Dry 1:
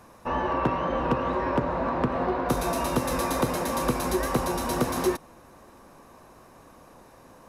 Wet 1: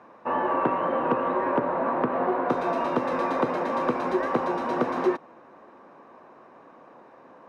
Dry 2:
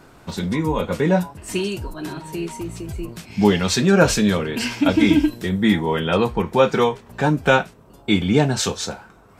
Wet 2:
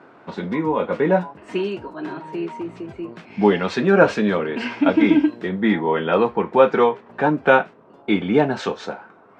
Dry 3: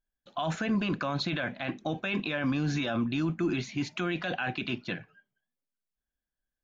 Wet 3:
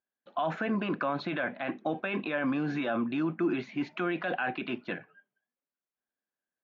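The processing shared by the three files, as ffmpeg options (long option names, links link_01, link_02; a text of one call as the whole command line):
ffmpeg -i in.wav -af "highpass=260,lowpass=2000,volume=2.5dB" out.wav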